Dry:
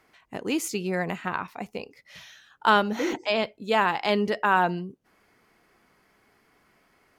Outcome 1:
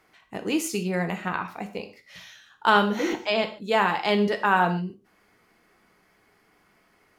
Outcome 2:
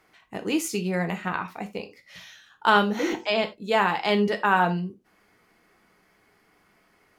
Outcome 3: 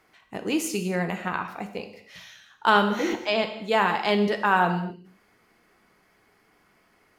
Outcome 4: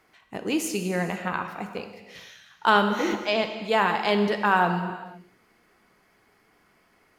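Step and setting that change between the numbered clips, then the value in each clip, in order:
gated-style reverb, gate: 170 ms, 110 ms, 290 ms, 530 ms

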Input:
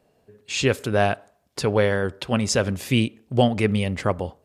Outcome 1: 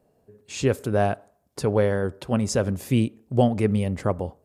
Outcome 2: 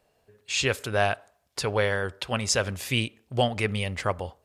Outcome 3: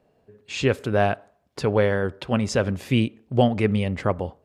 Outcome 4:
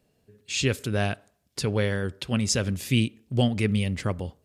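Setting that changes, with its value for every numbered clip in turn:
peaking EQ, frequency: 3 kHz, 230 Hz, 13 kHz, 790 Hz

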